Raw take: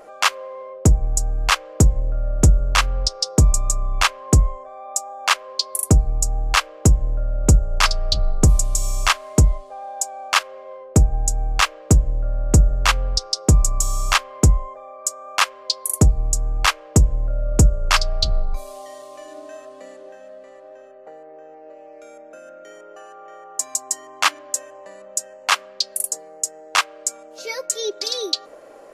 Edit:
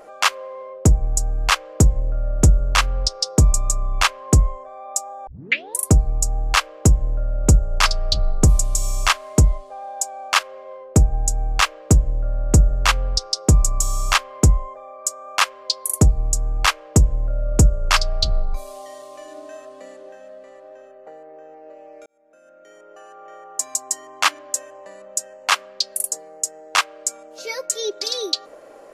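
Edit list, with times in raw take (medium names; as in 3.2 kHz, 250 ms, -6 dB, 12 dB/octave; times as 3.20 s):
5.27 s: tape start 0.53 s
22.06–23.31 s: fade in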